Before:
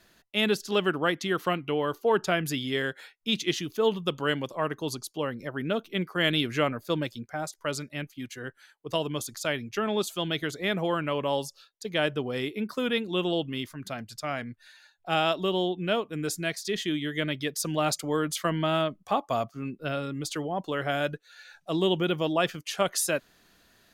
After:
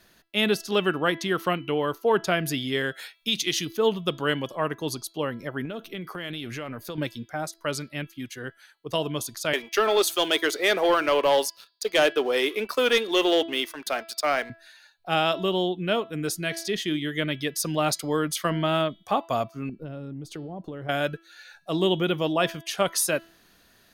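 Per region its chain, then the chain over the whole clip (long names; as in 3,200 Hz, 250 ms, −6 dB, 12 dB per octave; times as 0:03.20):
0:02.94–0:03.65: high-shelf EQ 2,300 Hz +9.5 dB + downward compressor 2 to 1, threshold −26 dBFS
0:05.65–0:06.98: transient designer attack −1 dB, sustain +5 dB + downward compressor, threshold −33 dBFS
0:09.53–0:14.50: high-pass filter 350 Hz 24 dB per octave + leveller curve on the samples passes 2
0:19.69–0:20.89: tilt shelving filter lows +9.5 dB, about 690 Hz + downward compressor 8 to 1, threshold −35 dBFS
whole clip: high-shelf EQ 8,400 Hz +3.5 dB; notch filter 7,400 Hz, Q 8.7; hum removal 332 Hz, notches 15; level +2 dB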